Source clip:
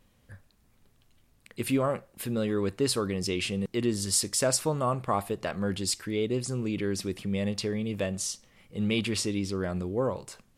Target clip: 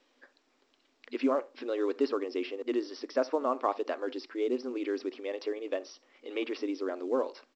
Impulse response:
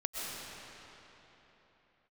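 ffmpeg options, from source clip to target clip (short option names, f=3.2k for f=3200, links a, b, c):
-filter_complex "[0:a]afftfilt=real='re*between(b*sr/4096,240,5900)':imag='im*between(b*sr/4096,240,5900)':win_size=4096:overlap=0.75,adynamicequalizer=threshold=0.00355:dfrequency=2000:dqfactor=1.3:tfrequency=2000:tqfactor=1.3:attack=5:release=100:ratio=0.375:range=1.5:mode=cutabove:tftype=bell,asplit=2[a][b];[b]adelay=92,lowpass=f=1.2k:p=1,volume=-19dB,asplit=2[c][d];[d]adelay=92,lowpass=f=1.2k:p=1,volume=0.23[e];[a][c][e]amix=inputs=3:normalize=0,atempo=1.4,acrossover=split=380|850|2200[f][g][h][i];[i]acompressor=threshold=-53dB:ratio=4[j];[f][g][h][j]amix=inputs=4:normalize=0" -ar 16000 -c:a pcm_mulaw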